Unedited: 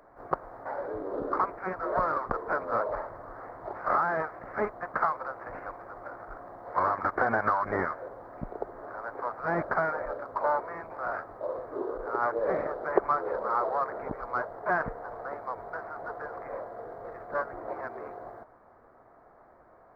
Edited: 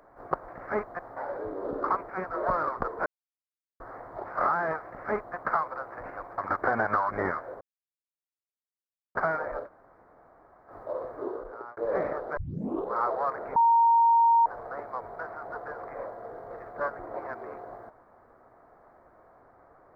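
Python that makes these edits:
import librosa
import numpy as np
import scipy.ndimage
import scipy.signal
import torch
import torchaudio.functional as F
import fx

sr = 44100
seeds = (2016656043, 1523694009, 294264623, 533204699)

y = fx.edit(x, sr, fx.silence(start_s=2.55, length_s=0.74),
    fx.duplicate(start_s=4.34, length_s=0.51, to_s=0.48),
    fx.cut(start_s=5.87, length_s=1.05),
    fx.silence(start_s=8.15, length_s=1.54),
    fx.room_tone_fill(start_s=10.2, length_s=1.04, crossfade_s=0.06),
    fx.fade_out_span(start_s=11.78, length_s=0.53),
    fx.tape_start(start_s=12.91, length_s=0.58),
    fx.bleep(start_s=14.1, length_s=0.9, hz=927.0, db=-17.0), tone=tone)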